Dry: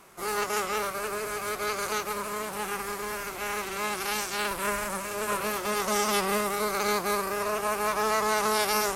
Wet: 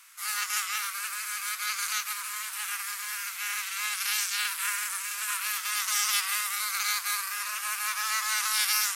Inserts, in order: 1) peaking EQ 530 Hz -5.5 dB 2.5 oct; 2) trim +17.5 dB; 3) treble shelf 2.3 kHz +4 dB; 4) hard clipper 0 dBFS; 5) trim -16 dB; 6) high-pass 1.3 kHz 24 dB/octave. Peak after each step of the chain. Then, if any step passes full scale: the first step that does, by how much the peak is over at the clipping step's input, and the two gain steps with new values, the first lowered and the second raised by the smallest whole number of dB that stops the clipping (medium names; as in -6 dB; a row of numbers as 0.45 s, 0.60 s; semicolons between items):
-13.5 dBFS, +4.0 dBFS, +6.5 dBFS, 0.0 dBFS, -16.0 dBFS, -11.0 dBFS; step 2, 6.5 dB; step 2 +10.5 dB, step 5 -9 dB